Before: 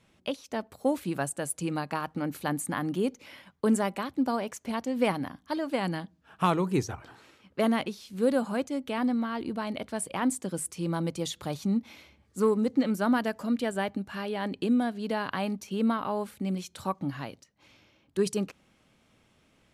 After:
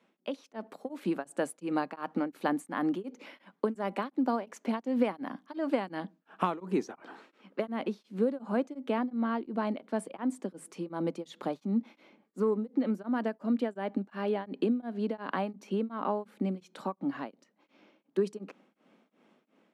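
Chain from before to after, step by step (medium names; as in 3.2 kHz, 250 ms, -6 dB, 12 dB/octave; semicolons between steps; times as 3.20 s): compression 10:1, threshold -28 dBFS, peak gain reduction 10 dB; low-pass 1.7 kHz 6 dB/octave, from 7.69 s 1 kHz; level rider gain up to 6 dB; steep high-pass 200 Hz 36 dB/octave; tremolo of two beating tones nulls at 2.8 Hz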